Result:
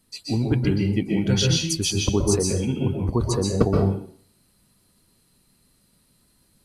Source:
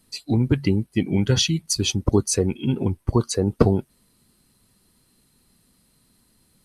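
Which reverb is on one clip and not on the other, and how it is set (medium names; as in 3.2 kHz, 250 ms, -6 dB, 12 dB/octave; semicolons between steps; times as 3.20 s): plate-style reverb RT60 0.51 s, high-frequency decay 0.95×, pre-delay 115 ms, DRR -0.5 dB; trim -3.5 dB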